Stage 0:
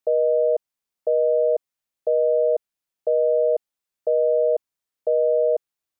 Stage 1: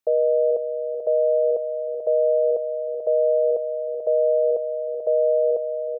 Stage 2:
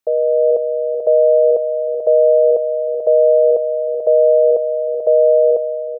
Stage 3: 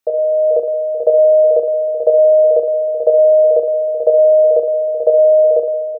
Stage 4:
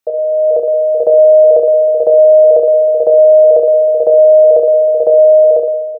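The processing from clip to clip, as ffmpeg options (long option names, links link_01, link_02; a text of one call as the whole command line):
ffmpeg -i in.wav -af "aecho=1:1:438|876|1314|1752|2190|2628:0.398|0.211|0.112|0.0593|0.0314|0.0166" out.wav
ffmpeg -i in.wav -af "dynaudnorm=framelen=120:gausssize=7:maxgain=5dB,volume=3dB" out.wav
ffmpeg -i in.wav -af "bandreject=frequency=60:width_type=h:width=6,bandreject=frequency=120:width_type=h:width=6,bandreject=frequency=180:width_type=h:width=6,bandreject=frequency=240:width_type=h:width=6,bandreject=frequency=300:width_type=h:width=6,bandreject=frequency=360:width_type=h:width=6,bandreject=frequency=420:width_type=h:width=6,bandreject=frequency=480:width_type=h:width=6,aecho=1:1:30|67.5|114.4|173|246.2:0.631|0.398|0.251|0.158|0.1,volume=2.5dB" out.wav
ffmpeg -i in.wav -af "alimiter=limit=-8.5dB:level=0:latency=1:release=30,dynaudnorm=framelen=240:gausssize=5:maxgain=11.5dB" out.wav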